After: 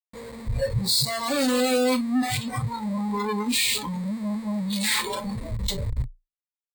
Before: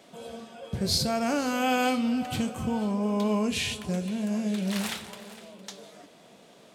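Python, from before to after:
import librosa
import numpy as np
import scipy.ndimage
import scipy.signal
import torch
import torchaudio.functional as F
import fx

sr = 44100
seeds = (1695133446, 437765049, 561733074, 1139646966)

y = fx.schmitt(x, sr, flips_db=-42.5)
y = fx.noise_reduce_blind(y, sr, reduce_db=19)
y = fx.ripple_eq(y, sr, per_octave=0.98, db=11)
y = y * librosa.db_to_amplitude(6.5)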